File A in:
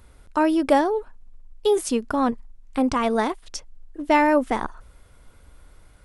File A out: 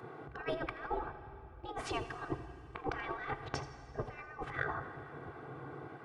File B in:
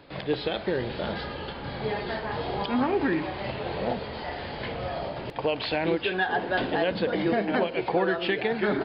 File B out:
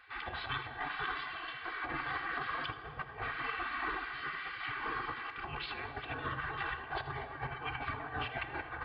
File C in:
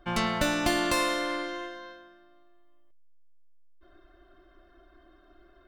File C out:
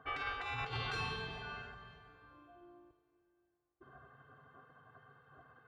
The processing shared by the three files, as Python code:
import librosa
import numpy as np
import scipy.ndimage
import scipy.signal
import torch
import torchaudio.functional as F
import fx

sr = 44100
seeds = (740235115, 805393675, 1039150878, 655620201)

y = scipy.signal.sosfilt(scipy.signal.butter(2, 1100.0, 'lowpass', fs=sr, output='sos'), x)
y = fx.spec_gate(y, sr, threshold_db=-20, keep='weak')
y = scipy.signal.sosfilt(scipy.signal.butter(2, 45.0, 'highpass', fs=sr, output='sos'), y)
y = fx.peak_eq(y, sr, hz=140.0, db=12.0, octaves=0.47)
y = y + 0.71 * np.pad(y, (int(2.6 * sr / 1000.0), 0))[:len(y)]
y = fx.over_compress(y, sr, threshold_db=-46.0, ratio=-0.5)
y = y + 10.0 ** (-16.0 / 20.0) * np.pad(y, (int(81 * sr / 1000.0), 0))[:len(y)]
y = fx.rev_plate(y, sr, seeds[0], rt60_s=2.9, hf_ratio=0.8, predelay_ms=0, drr_db=10.5)
y = F.gain(torch.from_numpy(y), 7.5).numpy()